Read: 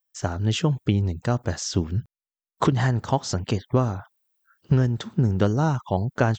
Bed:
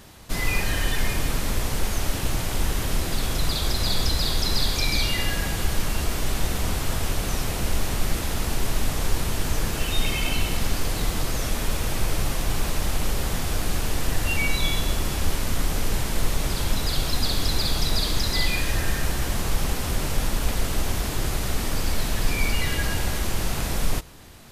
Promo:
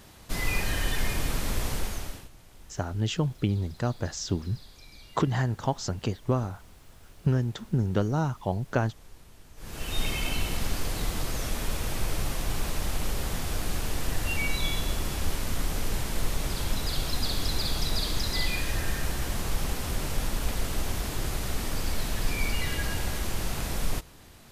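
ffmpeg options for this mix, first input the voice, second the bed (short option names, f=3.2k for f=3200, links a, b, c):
-filter_complex "[0:a]adelay=2550,volume=-5dB[a];[1:a]volume=18dB,afade=t=out:st=1.7:d=0.59:silence=0.0707946,afade=t=in:st=9.56:d=0.45:silence=0.0794328[b];[a][b]amix=inputs=2:normalize=0"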